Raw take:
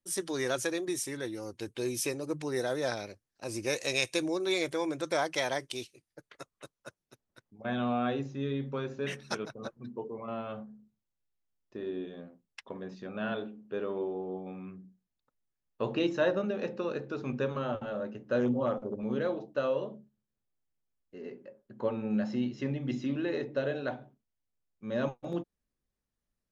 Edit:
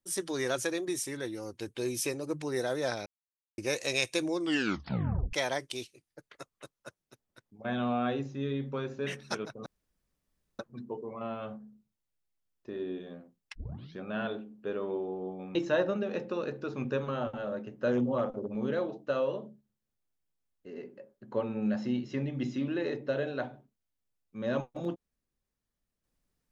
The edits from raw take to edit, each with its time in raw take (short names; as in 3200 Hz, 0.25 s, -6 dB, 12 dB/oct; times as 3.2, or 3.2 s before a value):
3.06–3.58 mute
4.33 tape stop 1.00 s
9.66 insert room tone 0.93 s
12.62 tape start 0.42 s
14.62–16.03 cut